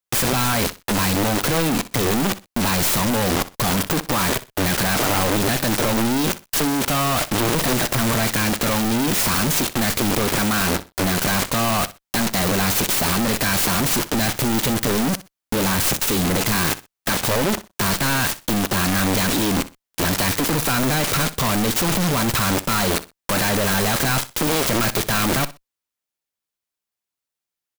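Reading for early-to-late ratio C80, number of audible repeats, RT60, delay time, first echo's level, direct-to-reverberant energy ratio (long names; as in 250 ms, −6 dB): no reverb audible, 2, no reverb audible, 62 ms, −16.5 dB, no reverb audible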